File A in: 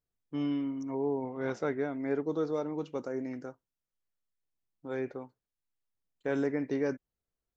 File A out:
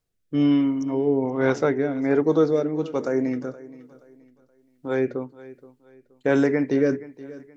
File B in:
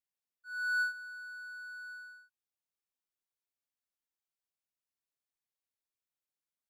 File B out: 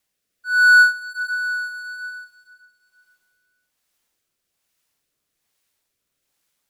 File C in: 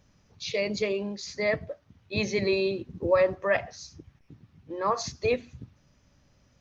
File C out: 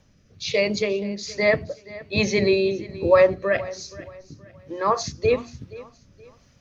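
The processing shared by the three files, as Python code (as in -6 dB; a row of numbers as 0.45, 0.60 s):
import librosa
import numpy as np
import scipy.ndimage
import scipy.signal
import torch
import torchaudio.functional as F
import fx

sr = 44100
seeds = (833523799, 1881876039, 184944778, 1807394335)

y = fx.rotary(x, sr, hz=1.2)
y = fx.hum_notches(y, sr, base_hz=60, count=7)
y = fx.echo_feedback(y, sr, ms=474, feedback_pct=33, wet_db=-19)
y = y * 10.0 ** (-24 / 20.0) / np.sqrt(np.mean(np.square(y)))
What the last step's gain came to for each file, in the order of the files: +13.0, +22.0, +7.5 dB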